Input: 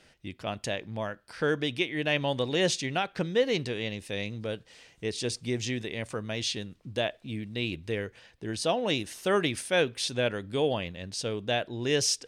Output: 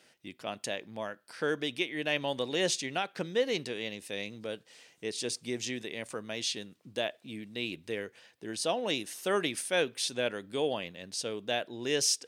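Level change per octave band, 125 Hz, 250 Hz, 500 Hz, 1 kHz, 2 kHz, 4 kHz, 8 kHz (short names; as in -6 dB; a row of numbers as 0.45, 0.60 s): -11.0, -5.0, -3.5, -3.5, -3.0, -2.0, 0.0 dB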